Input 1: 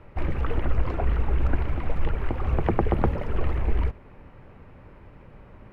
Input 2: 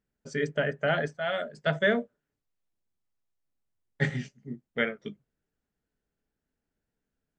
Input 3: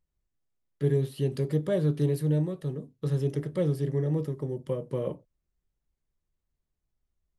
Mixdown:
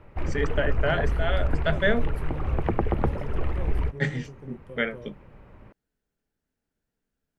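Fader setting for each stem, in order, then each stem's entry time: -2.0 dB, +1.0 dB, -12.5 dB; 0.00 s, 0.00 s, 0.00 s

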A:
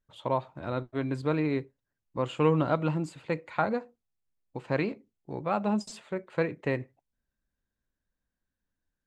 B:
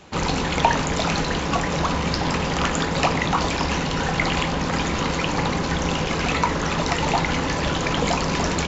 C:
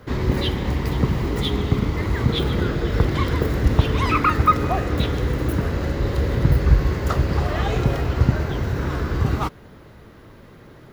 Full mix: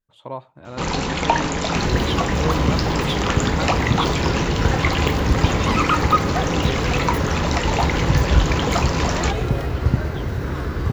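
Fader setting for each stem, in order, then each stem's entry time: -3.0 dB, 0.0 dB, -1.0 dB; 0.00 s, 0.65 s, 1.65 s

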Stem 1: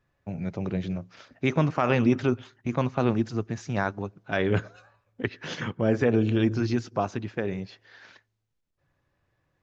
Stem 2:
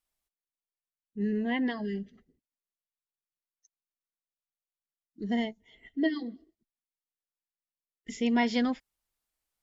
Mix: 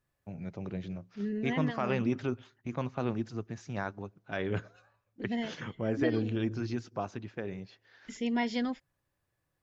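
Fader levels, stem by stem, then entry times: -8.5 dB, -4.5 dB; 0.00 s, 0.00 s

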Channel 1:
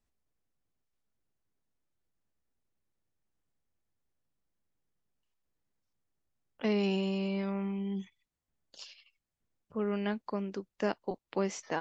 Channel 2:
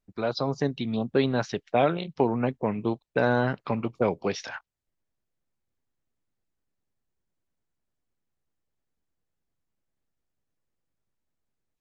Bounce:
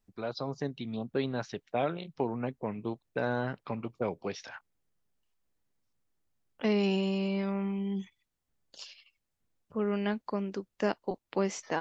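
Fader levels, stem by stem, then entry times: +2.0 dB, -8.0 dB; 0.00 s, 0.00 s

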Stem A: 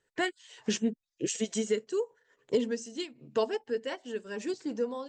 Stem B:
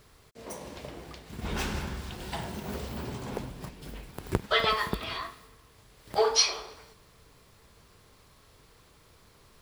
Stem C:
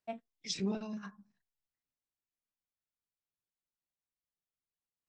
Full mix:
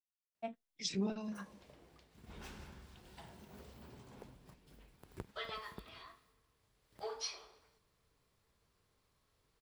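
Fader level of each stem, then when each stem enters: mute, -19.0 dB, -1.5 dB; mute, 0.85 s, 0.35 s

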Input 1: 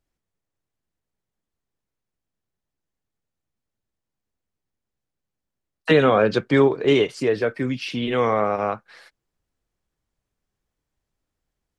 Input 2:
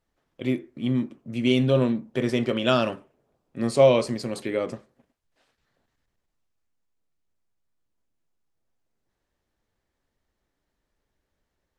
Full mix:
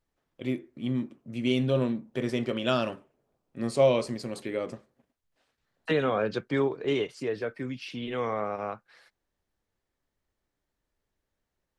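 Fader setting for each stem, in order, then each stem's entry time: -10.0 dB, -5.0 dB; 0.00 s, 0.00 s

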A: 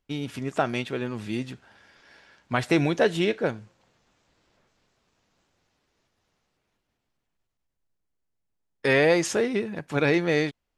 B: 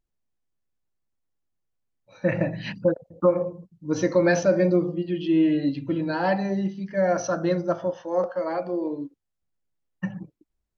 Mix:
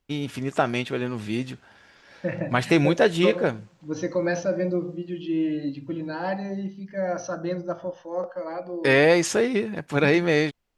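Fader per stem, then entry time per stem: +2.5 dB, -5.0 dB; 0.00 s, 0.00 s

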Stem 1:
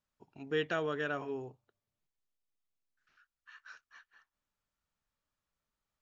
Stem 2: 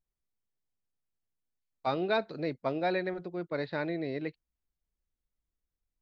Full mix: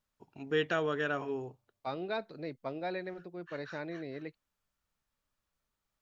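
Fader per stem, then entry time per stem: +2.5 dB, -7.0 dB; 0.00 s, 0.00 s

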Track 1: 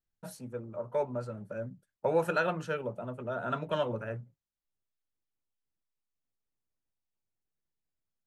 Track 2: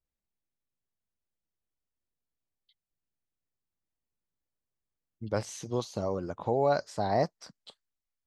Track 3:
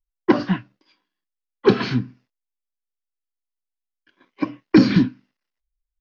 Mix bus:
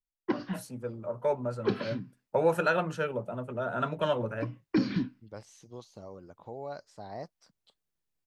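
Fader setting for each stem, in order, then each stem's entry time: +2.5 dB, -14.0 dB, -14.0 dB; 0.30 s, 0.00 s, 0.00 s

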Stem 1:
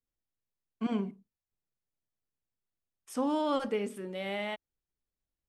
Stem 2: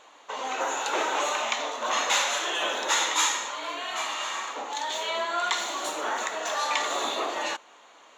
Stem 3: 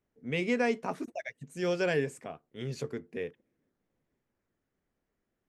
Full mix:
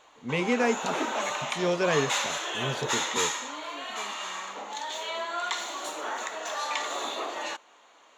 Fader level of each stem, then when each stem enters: -17.0 dB, -4.0 dB, +3.0 dB; 0.25 s, 0.00 s, 0.00 s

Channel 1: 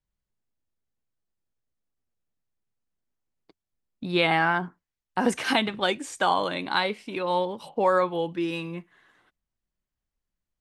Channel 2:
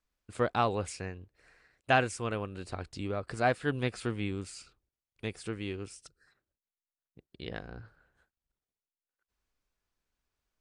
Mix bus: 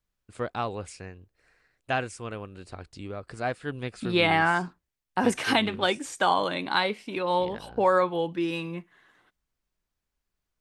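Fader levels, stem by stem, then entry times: 0.0 dB, -2.5 dB; 0.00 s, 0.00 s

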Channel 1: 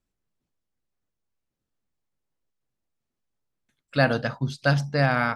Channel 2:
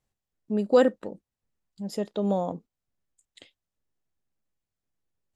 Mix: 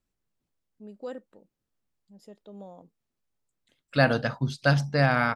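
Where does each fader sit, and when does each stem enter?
-0.5 dB, -18.5 dB; 0.00 s, 0.30 s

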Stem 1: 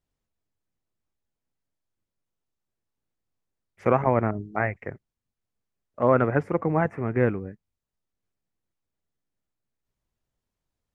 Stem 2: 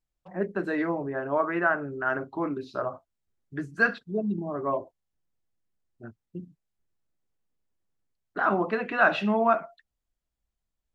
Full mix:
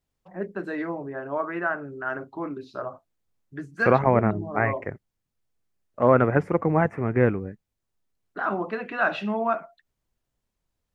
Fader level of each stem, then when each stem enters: +2.0 dB, -2.5 dB; 0.00 s, 0.00 s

